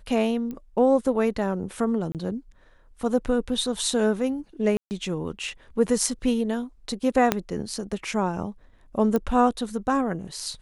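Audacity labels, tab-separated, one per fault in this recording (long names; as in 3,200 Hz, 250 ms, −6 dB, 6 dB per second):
0.510000	0.510000	click −23 dBFS
2.120000	2.150000	drop-out 28 ms
4.770000	4.910000	drop-out 139 ms
7.320000	7.320000	click −5 dBFS
9.160000	9.160000	click −13 dBFS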